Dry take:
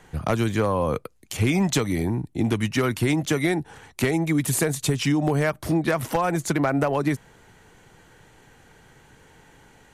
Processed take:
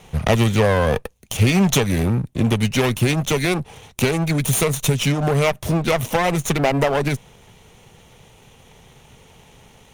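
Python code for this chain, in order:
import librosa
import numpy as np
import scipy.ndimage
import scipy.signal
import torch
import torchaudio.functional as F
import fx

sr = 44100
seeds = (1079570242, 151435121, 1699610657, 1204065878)

p1 = fx.lower_of_two(x, sr, delay_ms=0.32)
p2 = fx.rider(p1, sr, range_db=10, speed_s=2.0)
p3 = p1 + F.gain(torch.from_numpy(p2), 0.5).numpy()
y = fx.peak_eq(p3, sr, hz=310.0, db=-11.0, octaves=0.32)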